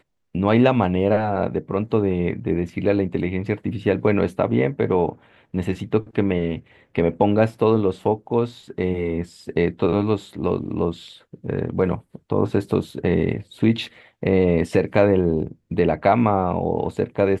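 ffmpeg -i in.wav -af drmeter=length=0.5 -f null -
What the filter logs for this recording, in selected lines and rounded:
Channel 1: DR: 12.3
Overall DR: 12.3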